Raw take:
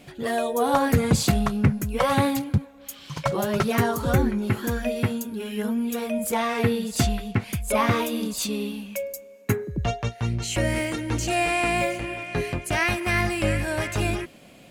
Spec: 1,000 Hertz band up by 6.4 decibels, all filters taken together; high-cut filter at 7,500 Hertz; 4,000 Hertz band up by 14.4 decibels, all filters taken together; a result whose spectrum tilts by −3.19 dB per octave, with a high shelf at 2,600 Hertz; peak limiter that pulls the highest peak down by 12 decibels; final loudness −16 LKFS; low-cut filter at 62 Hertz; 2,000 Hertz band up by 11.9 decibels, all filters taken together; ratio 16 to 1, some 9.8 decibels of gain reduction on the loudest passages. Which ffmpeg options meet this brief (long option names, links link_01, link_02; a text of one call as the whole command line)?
ffmpeg -i in.wav -af "highpass=62,lowpass=7500,equalizer=frequency=1000:width_type=o:gain=5,equalizer=frequency=2000:width_type=o:gain=6.5,highshelf=frequency=2600:gain=9,equalizer=frequency=4000:width_type=o:gain=8.5,acompressor=threshold=-19dB:ratio=16,volume=10.5dB,alimiter=limit=-7dB:level=0:latency=1" out.wav